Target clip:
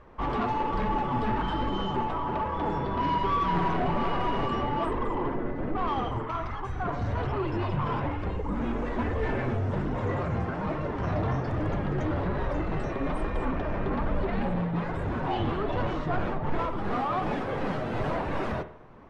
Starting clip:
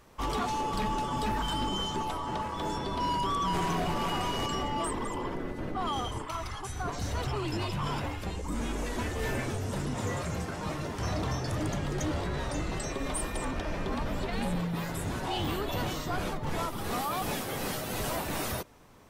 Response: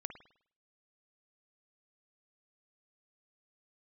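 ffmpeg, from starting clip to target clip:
-filter_complex "[0:a]lowpass=1.7k,asoftclip=type=tanh:threshold=-27.5dB,flanger=delay=1.8:depth=7.1:regen=55:speed=1.2:shape=sinusoidal,asplit=2[a][b];[1:a]atrim=start_sample=2205[c];[b][c]afir=irnorm=-1:irlink=0,volume=5.5dB[d];[a][d]amix=inputs=2:normalize=0,volume=2.5dB"

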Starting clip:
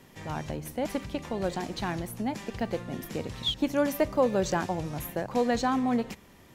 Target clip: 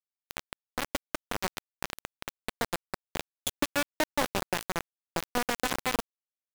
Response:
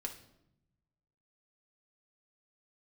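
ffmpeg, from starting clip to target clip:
-filter_complex "[0:a]acompressor=threshold=-27dB:ratio=3,asplit=2[a][b];[b]aecho=0:1:209|418|627:0.335|0.0804|0.0193[c];[a][c]amix=inputs=2:normalize=0,acrusher=bits=3:mix=0:aa=0.000001"

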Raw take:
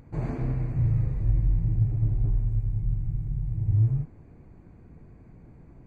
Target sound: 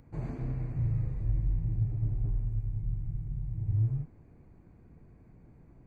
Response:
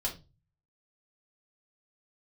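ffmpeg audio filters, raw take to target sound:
-filter_complex "[0:a]acrossover=split=300|3000[a][b][c];[b]acompressor=threshold=-39dB:ratio=6[d];[a][d][c]amix=inputs=3:normalize=0,volume=-6dB"

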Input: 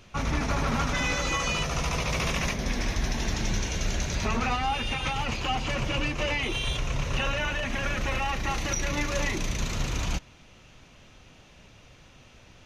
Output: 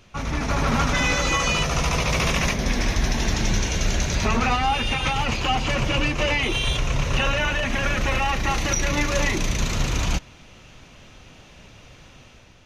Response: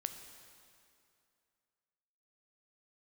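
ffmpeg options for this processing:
-af "dynaudnorm=f=140:g=7:m=6dB"

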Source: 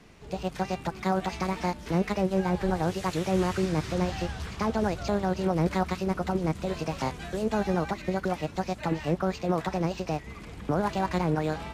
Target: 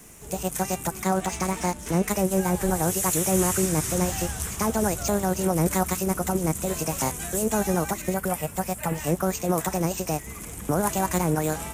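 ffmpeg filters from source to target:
-filter_complex "[0:a]asettb=1/sr,asplit=3[a][b][c];[a]atrim=end=8.144[d];[b]atrim=start=8.14:end=8.98,asetpts=PTS-STARTPTS,afade=t=in:d=0.004:c=qsin,afade=t=out:st=0.836:d=0.004:c=qsin,equalizer=f=315:t=o:w=0.33:g=-10,equalizer=f=4k:t=o:w=0.33:g=-6,equalizer=f=6.3k:t=o:w=0.33:g=-10[e];[c]atrim=start=8.976[f];[d][e]acrossfade=d=0.004:c1=hsin:c2=qsin[g];[g][f]acrossfade=d=0.004:c1=qsin:c2=hsin,aexciter=amount=12.1:drive=5.9:freq=6.6k,asettb=1/sr,asplit=3[h][i][j];[h]atrim=end=1.034[k];[i]atrim=start=1.03:end=2.08,asetpts=PTS-STARTPTS,afade=t=in:d=0.004:c=qsin,afade=t=out:st=1.046:d=0.004:c=qsin,adynamicsmooth=sensitivity=7:basefreq=7.2k[l];[j]atrim=start=2.076[m];[k][l]acrossfade=d=0.004:c1=hsin:c2=qsin[n];[n][m]acrossfade=d=0.004:c1=qsin:c2=hsin,volume=2.5dB"

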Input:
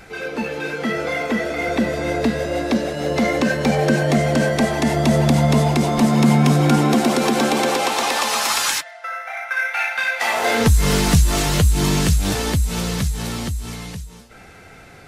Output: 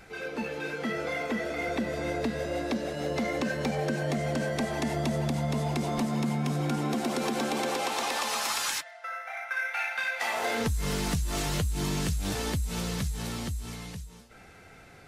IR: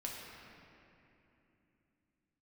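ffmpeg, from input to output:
-af "acompressor=threshold=-17dB:ratio=6,volume=-8.5dB"

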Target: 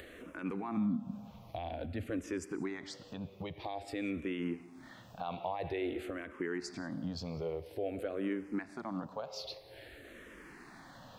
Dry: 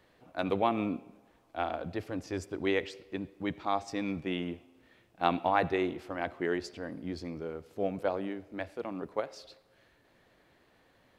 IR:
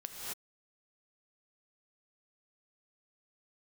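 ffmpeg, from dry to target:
-filter_complex "[0:a]asettb=1/sr,asplit=3[a][b][c];[a]atrim=end=0.774[d];[b]atrim=start=0.77:end=2.1,asetpts=PTS-STARTPTS,afade=t=in:d=0.004:c=qsin,afade=t=out:st=1.326:d=0.004:c=qsin,lowshelf=f=290:t=q:w=3:g=7.5[e];[c]atrim=start=2.096[f];[d][e]acrossfade=d=0.004:c1=hsin:c2=qsin[g];[g][f]acrossfade=d=0.004:c1=qsin:c2=hsin,alimiter=level_in=11dB:limit=-24dB:level=0:latency=1:release=287,volume=-11dB,acompressor=mode=upward:threshold=-52dB:ratio=2.5,asplit=2[h][i];[1:a]atrim=start_sample=2205,asetrate=61740,aresample=44100[j];[i][j]afir=irnorm=-1:irlink=0,volume=-12.5dB[k];[h][k]amix=inputs=2:normalize=0,asplit=2[l][m];[m]afreqshift=-0.5[n];[l][n]amix=inputs=2:normalize=1,volume=9dB"

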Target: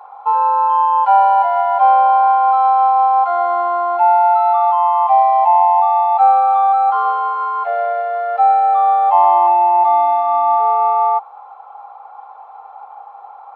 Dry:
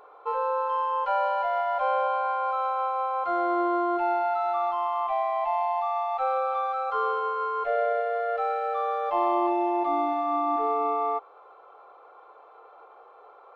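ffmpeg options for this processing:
-af "acontrast=75,highpass=f=820:t=q:w=10,volume=-4.5dB"

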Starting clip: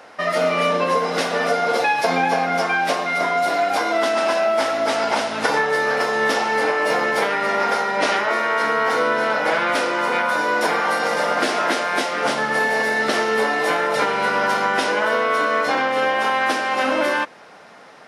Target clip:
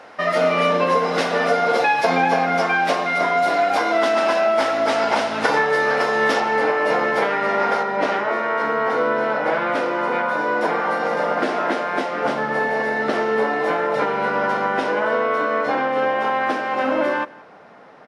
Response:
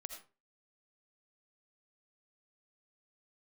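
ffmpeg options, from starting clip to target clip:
-af "asetnsamples=n=441:p=0,asendcmd='6.4 lowpass f 2000;7.83 lowpass f 1100',lowpass=f=4k:p=1,aecho=1:1:172:0.075,volume=1.5dB"

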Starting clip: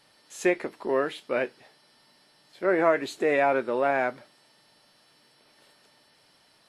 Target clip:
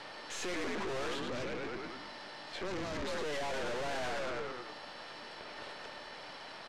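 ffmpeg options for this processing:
-filter_complex "[0:a]asplit=7[a][b][c][d][e][f][g];[b]adelay=107,afreqshift=-52,volume=-9.5dB[h];[c]adelay=214,afreqshift=-104,volume=-15.5dB[i];[d]adelay=321,afreqshift=-156,volume=-21.5dB[j];[e]adelay=428,afreqshift=-208,volume=-27.6dB[k];[f]adelay=535,afreqshift=-260,volume=-33.6dB[l];[g]adelay=642,afreqshift=-312,volume=-39.6dB[m];[a][h][i][j][k][l][m]amix=inputs=7:normalize=0,asplit=2[n][o];[o]highpass=f=720:p=1,volume=28dB,asoftclip=type=tanh:threshold=-7.5dB[p];[n][p]amix=inputs=2:normalize=0,lowpass=f=1.3k:p=1,volume=-6dB,asettb=1/sr,asplit=3[q][r][s];[q]atrim=end=1.144[t];[r]atrim=start=1.14:end=3.08,asetpts=PTS-STARTPTS,afade=t=in:d=0.004:c=qsin,afade=t=out:st=1.936:d=0.004:c=qsin,acrossover=split=260|3000[u][v][w];[v]acompressor=threshold=-33dB:ratio=6[x];[u][x][w]amix=inputs=3:normalize=0[y];[s]atrim=start=3.076[z];[t][y]acrossfade=d=0.004:c1=hsin:c2=qsin[aa];[aa][z]acrossfade=d=0.004:c1=qsin:c2=hsin,aeval=exprs='(tanh(63.1*val(0)+0.65)-tanh(0.65))/63.1':c=same,lowpass=7k,asplit=2[ab][ac];[ac]acompressor=threshold=-48dB:ratio=6,volume=-2dB[ad];[ab][ad]amix=inputs=2:normalize=0,volume=-2dB"

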